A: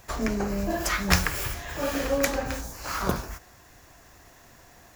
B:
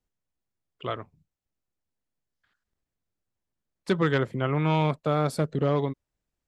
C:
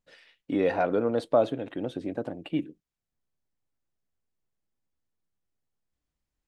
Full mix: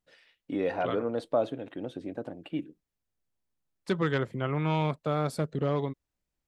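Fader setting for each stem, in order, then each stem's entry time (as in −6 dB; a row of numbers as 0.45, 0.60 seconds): muted, −4.0 dB, −4.5 dB; muted, 0.00 s, 0.00 s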